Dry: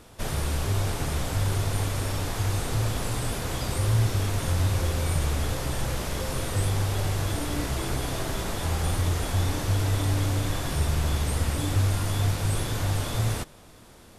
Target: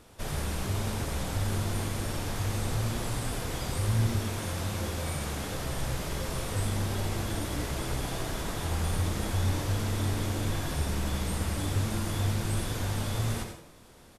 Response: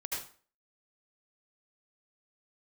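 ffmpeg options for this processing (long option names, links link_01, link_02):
-filter_complex "[0:a]asettb=1/sr,asplit=3[link_01][link_02][link_03];[link_01]atrim=end=4.194[link_04];[link_02]atrim=start=4.19:end=5.53,asetpts=PTS-STARTPTS,afade=type=in:duration=0.004:curve=qsin,afade=type=out:start_time=1.336:duration=0.004:curve=qsin,lowshelf=frequency=76:gain=-11[link_05];[link_03]atrim=start=5.526[link_06];[link_04][link_05]acrossfade=duration=0.004:curve1=hsin:curve2=qsin[link_07];[link_07][link_06]acrossfade=duration=0.004:curve1=qsin:curve2=hsin,asplit=5[link_08][link_09][link_10][link_11][link_12];[link_09]adelay=86,afreqshift=120,volume=-12.5dB[link_13];[link_10]adelay=172,afreqshift=240,volume=-21.4dB[link_14];[link_11]adelay=258,afreqshift=360,volume=-30.2dB[link_15];[link_12]adelay=344,afreqshift=480,volume=-39.1dB[link_16];[link_08][link_13][link_14][link_15][link_16]amix=inputs=5:normalize=0,asplit=2[link_17][link_18];[1:a]atrim=start_sample=2205[link_19];[link_18][link_19]afir=irnorm=-1:irlink=0,volume=-4.5dB[link_20];[link_17][link_20]amix=inputs=2:normalize=0,volume=-7.5dB"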